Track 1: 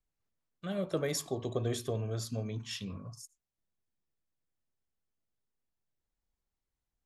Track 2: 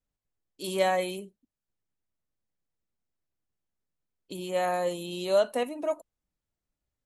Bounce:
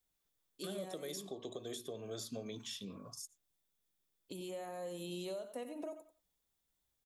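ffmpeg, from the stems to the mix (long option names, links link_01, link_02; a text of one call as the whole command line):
ffmpeg -i stem1.wav -i stem2.wav -filter_complex "[0:a]highpass=270,equalizer=frequency=3500:width=7.7:gain=9.5,crystalizer=i=1.5:c=0,volume=1dB[link_01];[1:a]acompressor=threshold=-34dB:ratio=6,volume=-4dB,asplit=2[link_02][link_03];[link_03]volume=-12dB,aecho=0:1:91|182|273:1|0.18|0.0324[link_04];[link_01][link_02][link_04]amix=inputs=3:normalize=0,acrossover=split=550|5200[link_05][link_06][link_07];[link_05]acompressor=threshold=-39dB:ratio=4[link_08];[link_06]acompressor=threshold=-50dB:ratio=4[link_09];[link_07]acompressor=threshold=-50dB:ratio=4[link_10];[link_08][link_09][link_10]amix=inputs=3:normalize=0,alimiter=level_in=8dB:limit=-24dB:level=0:latency=1:release=492,volume=-8dB" out.wav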